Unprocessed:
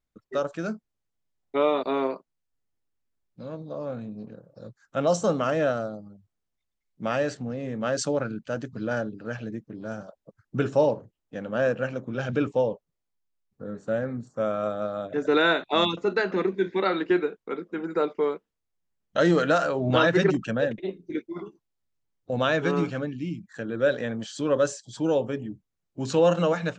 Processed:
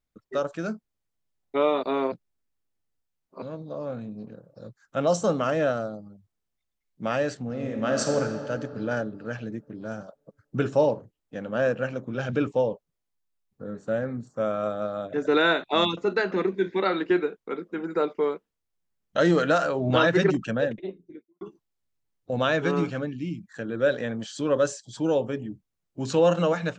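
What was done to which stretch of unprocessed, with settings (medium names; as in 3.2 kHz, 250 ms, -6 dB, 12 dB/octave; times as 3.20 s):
2.12–3.42 s: reverse
7.45–8.15 s: reverb throw, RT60 2.6 s, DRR 1.5 dB
20.57–21.41 s: studio fade out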